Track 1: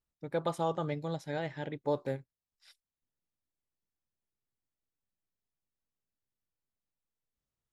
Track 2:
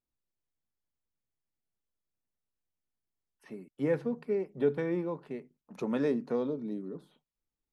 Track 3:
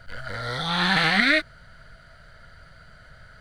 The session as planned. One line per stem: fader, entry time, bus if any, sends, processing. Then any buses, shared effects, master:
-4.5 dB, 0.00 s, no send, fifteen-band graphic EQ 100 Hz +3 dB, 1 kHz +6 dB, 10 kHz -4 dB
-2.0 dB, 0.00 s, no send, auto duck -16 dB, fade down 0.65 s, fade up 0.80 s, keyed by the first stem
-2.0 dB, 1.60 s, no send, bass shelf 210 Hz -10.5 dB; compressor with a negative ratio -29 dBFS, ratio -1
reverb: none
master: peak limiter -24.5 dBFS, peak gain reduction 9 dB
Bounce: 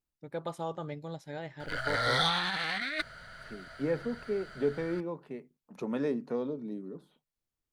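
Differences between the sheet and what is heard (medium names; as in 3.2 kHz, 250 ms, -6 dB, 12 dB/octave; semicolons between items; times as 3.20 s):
stem 1: missing fifteen-band graphic EQ 100 Hz +3 dB, 1 kHz +6 dB, 10 kHz -4 dB; master: missing peak limiter -24.5 dBFS, peak gain reduction 9 dB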